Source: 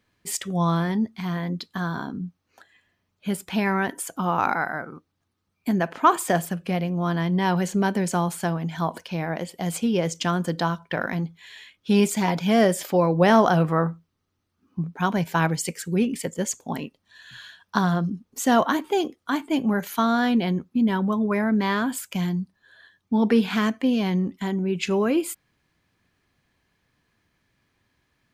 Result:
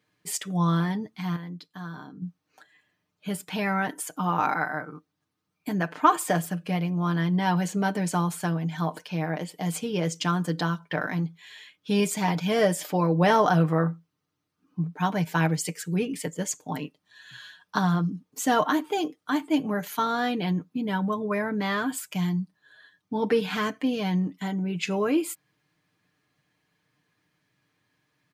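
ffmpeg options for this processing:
-filter_complex "[0:a]asplit=3[a][b][c];[a]atrim=end=1.362[d];[b]atrim=start=1.358:end=2.222,asetpts=PTS-STARTPTS,volume=-8.5dB[e];[c]atrim=start=2.218[f];[d][e]acrossfade=d=0.004:c1=hsin:c2=hsin[g];[g][f]acrossfade=d=0.004:c1=hsin:c2=hsin,highpass=100,aecho=1:1:6.6:0.65,volume=-3.5dB"

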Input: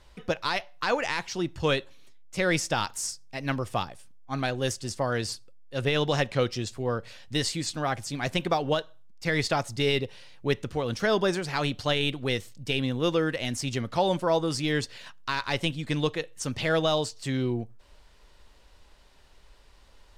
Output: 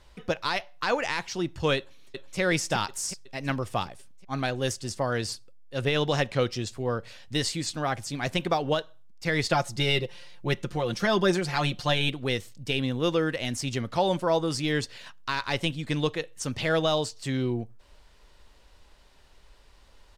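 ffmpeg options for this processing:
-filter_complex "[0:a]asplit=2[a][b];[b]afade=t=in:st=1.77:d=0.01,afade=t=out:st=2.39:d=0.01,aecho=0:1:370|740|1110|1480|1850|2220|2590|2960:0.707946|0.38937|0.214154|0.117784|0.0647815|0.0356298|0.0195964|0.010778[c];[a][c]amix=inputs=2:normalize=0,asettb=1/sr,asplit=3[d][e][f];[d]atrim=end=9.504[g];[e]atrim=start=9.5:end=12.09,asetpts=PTS-STARTPTS,afade=t=in:d=0.004:c=qsin,afade=t=out:st=2.586:d=0.004:c=qsin,aecho=1:1:5.7:0.65,atrim=end_sample=114219[h];[f]atrim=start=12.086[i];[g][h]acrossfade=d=0.004:c1=hsin:c2=qsin[j];[j][i]acrossfade=d=0.004:c1=qsin:c2=hsin"

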